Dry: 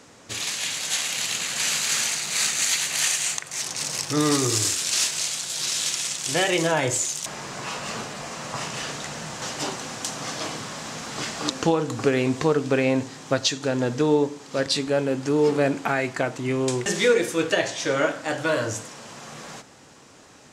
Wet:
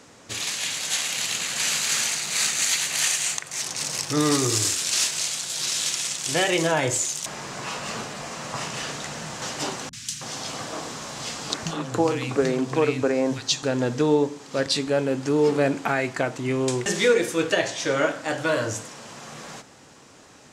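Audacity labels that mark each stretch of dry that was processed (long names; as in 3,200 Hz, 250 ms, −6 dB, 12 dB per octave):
9.890000	13.630000	three-band delay without the direct sound lows, highs, mids 40/320 ms, splits 180/2,000 Hz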